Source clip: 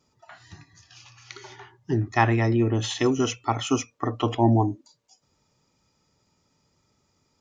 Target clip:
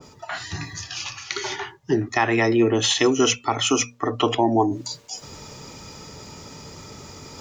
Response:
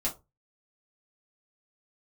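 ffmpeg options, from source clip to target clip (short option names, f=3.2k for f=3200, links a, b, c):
-filter_complex "[0:a]equalizer=f=440:w=7.9:g=4.5,bandreject=f=60:t=h:w=6,bandreject=f=120:t=h:w=6,bandreject=f=180:t=h:w=6,bandreject=f=240:t=h:w=6,acrossover=split=240[a][b];[a]acompressor=threshold=-37dB:ratio=6[c];[c][b]amix=inputs=2:normalize=0,alimiter=limit=-15dB:level=0:latency=1:release=157,areverse,acompressor=mode=upward:threshold=-28dB:ratio=2.5,areverse,adynamicequalizer=threshold=0.00794:dfrequency=1700:dqfactor=0.7:tfrequency=1700:tqfactor=0.7:attack=5:release=100:ratio=0.375:range=2:mode=boostabove:tftype=highshelf,volume=6.5dB"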